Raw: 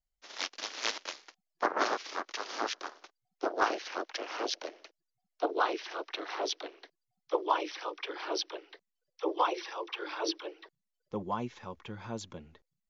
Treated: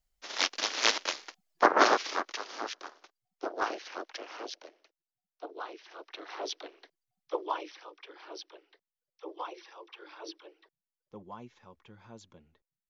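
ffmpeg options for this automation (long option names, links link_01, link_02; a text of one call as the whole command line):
ffmpeg -i in.wav -af "volume=16.5dB,afade=type=out:start_time=1.98:duration=0.5:silence=0.281838,afade=type=out:start_time=4.11:duration=0.65:silence=0.375837,afade=type=in:start_time=5.82:duration=0.68:silence=0.354813,afade=type=out:start_time=7.37:duration=0.49:silence=0.398107" out.wav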